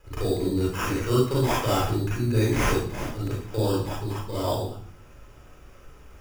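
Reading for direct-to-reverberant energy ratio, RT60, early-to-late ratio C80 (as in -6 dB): -7.0 dB, 0.55 s, 6.0 dB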